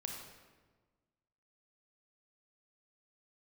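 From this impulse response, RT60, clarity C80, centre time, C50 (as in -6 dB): 1.4 s, 4.5 dB, 53 ms, 2.5 dB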